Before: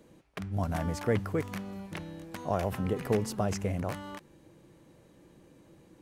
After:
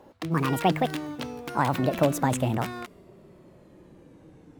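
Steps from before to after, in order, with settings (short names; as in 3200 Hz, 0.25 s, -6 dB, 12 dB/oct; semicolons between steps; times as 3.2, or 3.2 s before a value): speed glide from 172% -> 90%; mismatched tape noise reduction decoder only; gain +6 dB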